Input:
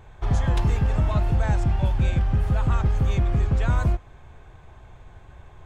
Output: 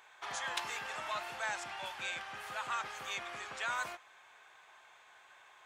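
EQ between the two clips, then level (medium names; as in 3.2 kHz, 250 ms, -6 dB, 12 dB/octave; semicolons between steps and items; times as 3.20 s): high-pass 1.3 kHz 12 dB/octave; +1.0 dB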